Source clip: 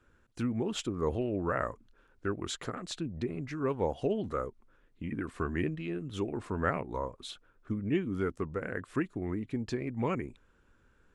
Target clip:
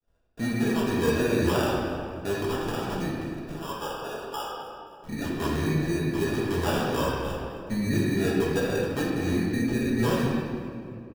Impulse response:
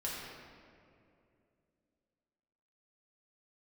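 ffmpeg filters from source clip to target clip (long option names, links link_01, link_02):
-filter_complex "[0:a]asettb=1/sr,asplit=3[link_01][link_02][link_03];[link_01]atrim=end=3.134[link_04];[link_02]atrim=start=3.13:end=5.09,asetpts=PTS-STARTPTS,afade=type=in:duration=0.004:curve=qsin,afade=type=out:start_time=1.956:duration=0.004:curve=qsin,highpass=1000[link_05];[link_03]atrim=start=5.086[link_06];[link_04][link_05]acrossfade=duration=0.004:curve1=hsin:curve2=qsin[link_07];[link_07][link_06]acrossfade=duration=0.004:curve1=qsin:curve2=hsin,agate=range=-33dB:threshold=-54dB:ratio=3:detection=peak,asplit=2[link_08][link_09];[link_09]alimiter=level_in=3dB:limit=-24dB:level=0:latency=1,volume=-3dB,volume=-1dB[link_10];[link_08][link_10]amix=inputs=2:normalize=0,aphaser=in_gain=1:out_gain=1:delay=4.7:decay=0.26:speed=1.4:type=triangular,acrusher=samples=21:mix=1:aa=0.000001,aecho=1:1:264|528|792:0.119|0.0392|0.0129[link_11];[1:a]atrim=start_sample=2205[link_12];[link_11][link_12]afir=irnorm=-1:irlink=0"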